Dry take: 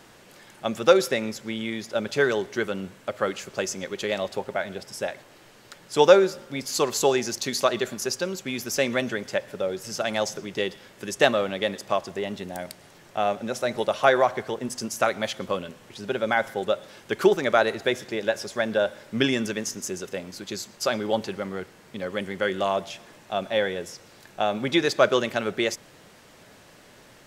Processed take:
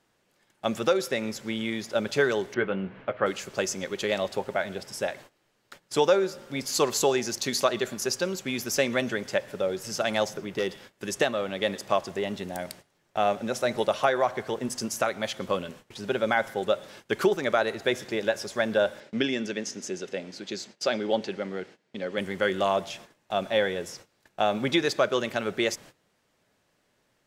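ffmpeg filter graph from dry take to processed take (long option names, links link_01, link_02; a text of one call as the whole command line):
ffmpeg -i in.wav -filter_complex "[0:a]asettb=1/sr,asplit=3[link_01][link_02][link_03];[link_01]atrim=end=2.544[link_04];[link_02]atrim=start=2.54:end=3.26,asetpts=PTS-STARTPTS,afade=type=in:duration=0.004:curve=qsin,afade=type=out:start_time=0.716:duration=0.004:curve=qsin,lowpass=frequency=2800:width=0.5412,lowpass=frequency=2800:width=1.3066,asplit=2[link_05][link_06];[link_06]adelay=16,volume=-9dB[link_07];[link_05][link_07]amix=inputs=2:normalize=0,atrim=end_sample=31752,acompressor=mode=upward:threshold=-39dB:ratio=2.5:attack=3.2:release=140:knee=2.83:detection=peak[link_08];[link_03]atrim=start=3.256[link_09];[link_04][link_08]acrossfade=duration=0.004:curve1=hsin:curve2=qsin[link_10];[link_10][link_09]acrossfade=duration=0.004:curve1=qsin:curve2=hsin,asettb=1/sr,asplit=3[link_11][link_12][link_13];[link_11]atrim=end=10.254[link_14];[link_12]atrim=start=10.25:end=10.69,asetpts=PTS-STARTPTS,afade=type=in:duration=0.004:curve=qsin,afade=type=out:start_time=0.436:duration=0.004:curve=qsin,equalizer=frequency=6400:width_type=o:width=1.6:gain=-7,asoftclip=type=hard:threshold=-20dB[link_15];[link_13]atrim=start=10.686[link_16];[link_14][link_15]acrossfade=duration=0.004:curve1=hsin:curve2=qsin[link_17];[link_17][link_16]acrossfade=duration=0.004:curve1=qsin:curve2=hsin,asettb=1/sr,asplit=3[link_18][link_19][link_20];[link_18]atrim=end=19.004[link_21];[link_19]atrim=start=19:end=22.18,asetpts=PTS-STARTPTS,afade=type=in:duration=0.004:curve=qsin,afade=type=out:start_time=3.176:duration=0.004:curve=qsin,highpass=180,lowpass=5500,equalizer=frequency=1100:width_type=o:width=0.67:gain=-7[link_22];[link_20]atrim=start=22.176[link_23];[link_21][link_22]acrossfade=duration=0.004:curve1=hsin:curve2=qsin[link_24];[link_24][link_23]acrossfade=duration=0.004:curve1=qsin:curve2=hsin,agate=range=-19dB:threshold=-46dB:ratio=16:detection=peak,alimiter=limit=-10.5dB:level=0:latency=1:release=496" out.wav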